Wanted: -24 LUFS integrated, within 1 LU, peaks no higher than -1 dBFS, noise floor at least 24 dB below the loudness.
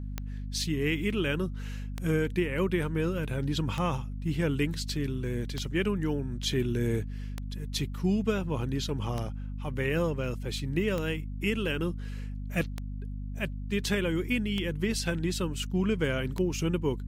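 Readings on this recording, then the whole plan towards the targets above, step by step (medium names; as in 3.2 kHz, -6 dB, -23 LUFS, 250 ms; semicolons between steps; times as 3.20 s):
clicks found 10; hum 50 Hz; highest harmonic 250 Hz; hum level -34 dBFS; loudness -31.0 LUFS; peak level -14.5 dBFS; loudness target -24.0 LUFS
-> de-click; de-hum 50 Hz, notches 5; trim +7 dB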